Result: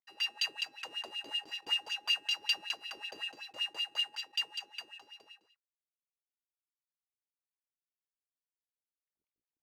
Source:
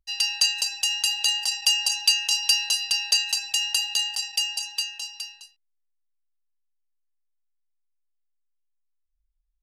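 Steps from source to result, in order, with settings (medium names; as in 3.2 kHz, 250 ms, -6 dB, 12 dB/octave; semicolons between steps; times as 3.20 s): square wave that keeps the level; wah-wah 5.3 Hz 310–3200 Hz, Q 3.6; trim -5.5 dB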